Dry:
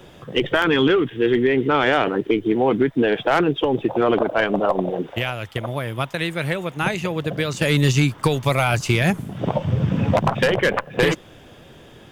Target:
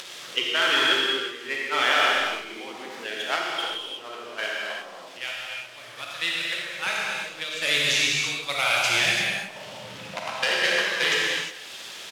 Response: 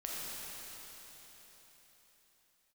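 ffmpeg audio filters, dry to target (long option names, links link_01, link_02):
-filter_complex "[0:a]aeval=exprs='val(0)+0.5*0.0531*sgn(val(0))':channel_layout=same,bandpass=frequency=4100:width_type=q:width=0.8:csg=0,agate=range=-13dB:threshold=-27dB:ratio=16:detection=peak,asplit=2[link_01][link_02];[link_02]adelay=190,highpass=300,lowpass=3400,asoftclip=type=hard:threshold=-20dB,volume=-15dB[link_03];[link_01][link_03]amix=inputs=2:normalize=0[link_04];[1:a]atrim=start_sample=2205,afade=type=out:start_time=0.42:duration=0.01,atrim=end_sample=18963[link_05];[link_04][link_05]afir=irnorm=-1:irlink=0,acompressor=mode=upward:threshold=-36dB:ratio=2.5,asplit=3[link_06][link_07][link_08];[link_06]afade=type=out:start_time=3.35:duration=0.02[link_09];[link_07]flanger=delay=7.3:depth=8.4:regen=-67:speed=1.6:shape=triangular,afade=type=in:start_time=3.35:duration=0.02,afade=type=out:start_time=5.97:duration=0.02[link_10];[link_08]afade=type=in:start_time=5.97:duration=0.02[link_11];[link_09][link_10][link_11]amix=inputs=3:normalize=0,volume=5dB"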